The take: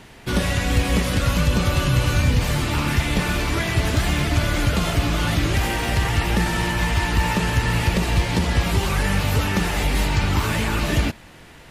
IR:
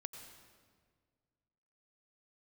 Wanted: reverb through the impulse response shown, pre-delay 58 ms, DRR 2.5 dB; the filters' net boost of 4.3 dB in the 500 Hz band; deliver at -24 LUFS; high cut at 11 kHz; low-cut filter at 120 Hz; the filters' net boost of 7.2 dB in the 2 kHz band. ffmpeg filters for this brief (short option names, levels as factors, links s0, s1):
-filter_complex "[0:a]highpass=120,lowpass=11000,equalizer=f=500:t=o:g=5,equalizer=f=2000:t=o:g=8.5,asplit=2[s0][s1];[1:a]atrim=start_sample=2205,adelay=58[s2];[s1][s2]afir=irnorm=-1:irlink=0,volume=1.12[s3];[s0][s3]amix=inputs=2:normalize=0,volume=0.447"